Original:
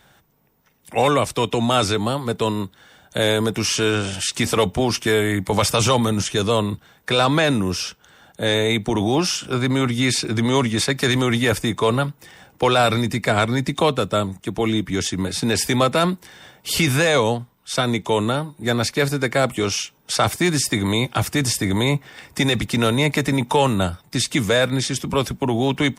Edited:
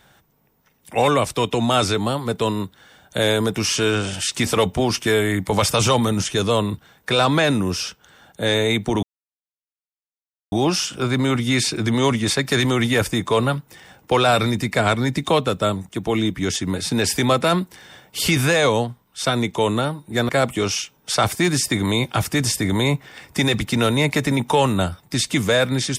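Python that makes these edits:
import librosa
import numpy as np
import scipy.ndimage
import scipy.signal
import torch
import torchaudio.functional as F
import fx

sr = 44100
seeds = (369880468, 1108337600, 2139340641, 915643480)

y = fx.edit(x, sr, fx.insert_silence(at_s=9.03, length_s=1.49),
    fx.cut(start_s=18.8, length_s=0.5), tone=tone)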